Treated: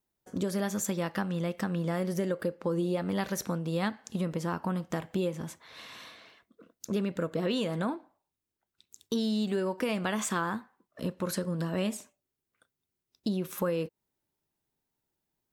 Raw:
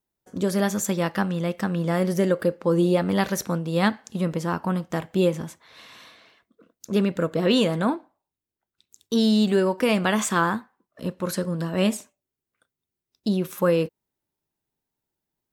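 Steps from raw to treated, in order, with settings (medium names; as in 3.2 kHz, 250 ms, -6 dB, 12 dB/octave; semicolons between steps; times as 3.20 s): compression 3:1, threshold -30 dBFS, peak gain reduction 11 dB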